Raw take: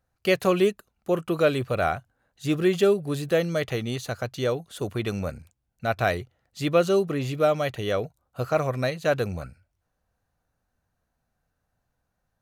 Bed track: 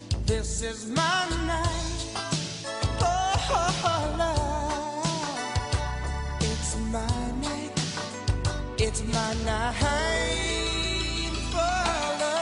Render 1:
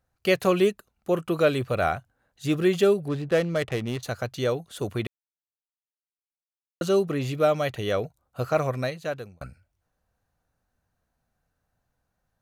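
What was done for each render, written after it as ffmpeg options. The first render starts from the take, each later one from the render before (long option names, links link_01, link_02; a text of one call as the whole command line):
ffmpeg -i in.wav -filter_complex "[0:a]asettb=1/sr,asplit=3[link_01][link_02][link_03];[link_01]atrim=end=3.084[link_04];[link_02]atrim=start=3.08:end=4.03,asetpts=PTS-STARTPTS,afade=type=in:duration=0.004:curve=qsin,afade=type=out:start_time=0.946:duration=0.004:curve=qsin,adynamicsmooth=sensitivity=7.5:basefreq=860[link_05];[link_03]atrim=start=4.026[link_06];[link_04][link_05]acrossfade=duration=0.004:curve1=hsin:curve2=qsin[link_07];[link_07][link_06]acrossfade=duration=0.004:curve1=qsin:curve2=hsin,asplit=4[link_08][link_09][link_10][link_11];[link_08]atrim=end=5.07,asetpts=PTS-STARTPTS,afade=type=out:start_time=5.066:duration=0.004:curve=hsin[link_12];[link_09]atrim=start=5.07:end=6.81,asetpts=PTS-STARTPTS,volume=0[link_13];[link_10]atrim=start=6.81:end=9.41,asetpts=PTS-STARTPTS,afade=type=in:duration=0.004:curve=hsin,afade=type=out:start_time=1.86:duration=0.74[link_14];[link_11]atrim=start=9.41,asetpts=PTS-STARTPTS,afade=type=in:duration=0.004:curve=hsin[link_15];[link_12][link_13][link_14][link_15]concat=n=4:v=0:a=1" out.wav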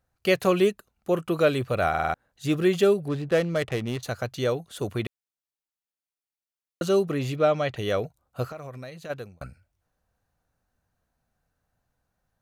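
ffmpeg -i in.wav -filter_complex "[0:a]asplit=3[link_01][link_02][link_03];[link_01]afade=type=out:start_time=7.35:duration=0.02[link_04];[link_02]lowpass=5200,afade=type=in:start_time=7.35:duration=0.02,afade=type=out:start_time=7.75:duration=0.02[link_05];[link_03]afade=type=in:start_time=7.75:duration=0.02[link_06];[link_04][link_05][link_06]amix=inputs=3:normalize=0,asplit=3[link_07][link_08][link_09];[link_07]afade=type=out:start_time=8.47:duration=0.02[link_10];[link_08]acompressor=threshold=-36dB:ratio=6:attack=3.2:release=140:knee=1:detection=peak,afade=type=in:start_time=8.47:duration=0.02,afade=type=out:start_time=9.09:duration=0.02[link_11];[link_09]afade=type=in:start_time=9.09:duration=0.02[link_12];[link_10][link_11][link_12]amix=inputs=3:normalize=0,asplit=6[link_13][link_14][link_15][link_16][link_17][link_18];[link_13]atrim=end=1.942[link_19];[link_14]atrim=start=1.888:end=1.942[link_20];[link_15]atrim=start=1.888:end=1.942[link_21];[link_16]atrim=start=1.888:end=1.942[link_22];[link_17]atrim=start=1.888:end=1.942[link_23];[link_18]atrim=start=2.138[link_24];[link_19][link_20]acrossfade=duration=0.004:curve1=hsin:curve2=hsin[link_25];[link_25][link_21]acrossfade=duration=0.004:curve1=hsin:curve2=hsin[link_26];[link_26][link_22]acrossfade=duration=0.004:curve1=hsin:curve2=hsin[link_27];[link_27][link_23]acrossfade=duration=0.004:curve1=hsin:curve2=hsin[link_28];[link_28][link_24]acrossfade=duration=0.004:curve1=hsin:curve2=hsin" out.wav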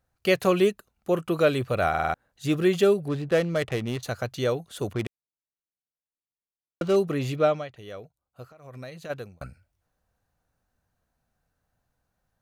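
ffmpeg -i in.wav -filter_complex "[0:a]asettb=1/sr,asplit=3[link_01][link_02][link_03];[link_01]atrim=end=4.934[link_04];[link_02]atrim=start=4.93:end=6.96,asetpts=PTS-STARTPTS,afade=type=in:duration=0.004:curve=qsin,afade=type=out:start_time=2.026:duration=0.004:curve=qsin,adynamicsmooth=sensitivity=6:basefreq=610[link_05];[link_03]atrim=start=6.956[link_06];[link_04][link_05]acrossfade=duration=0.004:curve1=hsin:curve2=qsin[link_07];[link_07][link_06]acrossfade=duration=0.004:curve1=qsin:curve2=hsin,asplit=3[link_08][link_09][link_10];[link_08]atrim=end=7.68,asetpts=PTS-STARTPTS,afade=type=out:start_time=7.46:duration=0.22:silence=0.199526[link_11];[link_09]atrim=start=7.68:end=8.59,asetpts=PTS-STARTPTS,volume=-14dB[link_12];[link_10]atrim=start=8.59,asetpts=PTS-STARTPTS,afade=type=in:duration=0.22:silence=0.199526[link_13];[link_11][link_12][link_13]concat=n=3:v=0:a=1" out.wav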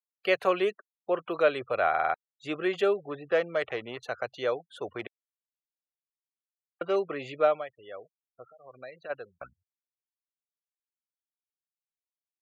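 ffmpeg -i in.wav -filter_complex "[0:a]afftfilt=real='re*gte(hypot(re,im),0.00794)':imag='im*gte(hypot(re,im),0.00794)':win_size=1024:overlap=0.75,acrossover=split=410 3300:gain=0.1 1 0.178[link_01][link_02][link_03];[link_01][link_02][link_03]amix=inputs=3:normalize=0" out.wav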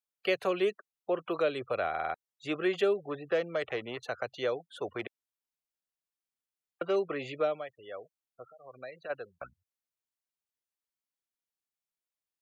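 ffmpeg -i in.wav -filter_complex "[0:a]acrossover=split=450|3000[link_01][link_02][link_03];[link_02]acompressor=threshold=-32dB:ratio=6[link_04];[link_01][link_04][link_03]amix=inputs=3:normalize=0" out.wav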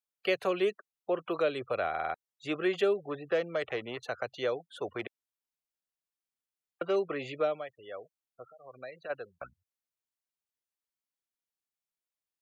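ffmpeg -i in.wav -af anull out.wav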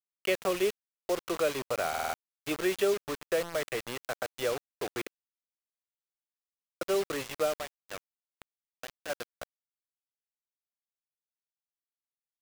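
ffmpeg -i in.wav -af "acrusher=bits=5:mix=0:aa=0.000001" out.wav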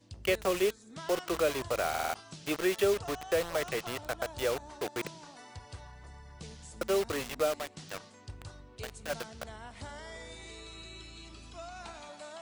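ffmpeg -i in.wav -i bed.wav -filter_complex "[1:a]volume=-19.5dB[link_01];[0:a][link_01]amix=inputs=2:normalize=0" out.wav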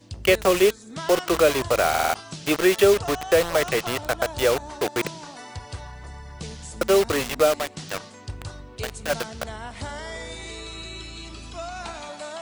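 ffmpeg -i in.wav -af "volume=10.5dB" out.wav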